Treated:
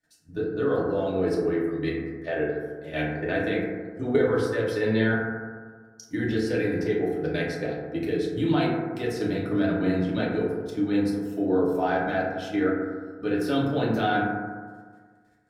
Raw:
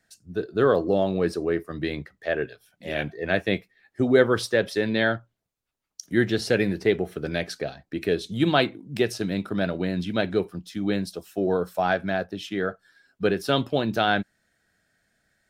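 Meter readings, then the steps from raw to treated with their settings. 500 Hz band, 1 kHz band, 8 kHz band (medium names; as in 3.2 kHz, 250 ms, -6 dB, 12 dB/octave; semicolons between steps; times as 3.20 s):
-1.5 dB, -1.0 dB, no reading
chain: level held to a coarse grid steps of 14 dB; FDN reverb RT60 1.6 s, low-frequency decay 1.05×, high-frequency decay 0.25×, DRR -6 dB; trim -3.5 dB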